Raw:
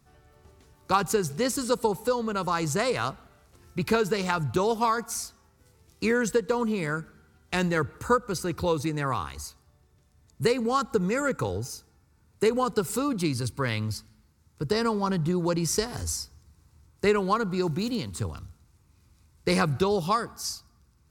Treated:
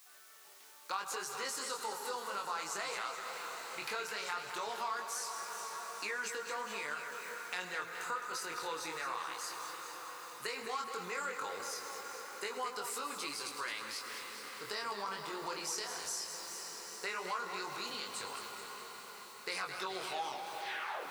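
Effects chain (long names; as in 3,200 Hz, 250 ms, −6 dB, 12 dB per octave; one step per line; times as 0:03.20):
turntable brake at the end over 1.28 s
background noise blue −58 dBFS
high-pass filter 970 Hz 12 dB per octave
high-shelf EQ 10,000 Hz −7 dB
convolution reverb RT60 0.80 s, pre-delay 87 ms, DRR 16 dB
transient designer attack −3 dB, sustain +4 dB
feedback delay with all-pass diffusion 453 ms, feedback 66%, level −15 dB
chorus effect 0.16 Hz, delay 19.5 ms, depth 6.1 ms
downward compressor 3 to 1, threshold −46 dBFS, peak gain reduction 15.5 dB
feedback echo with a swinging delay time 212 ms, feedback 57%, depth 91 cents, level −8.5 dB
level +6 dB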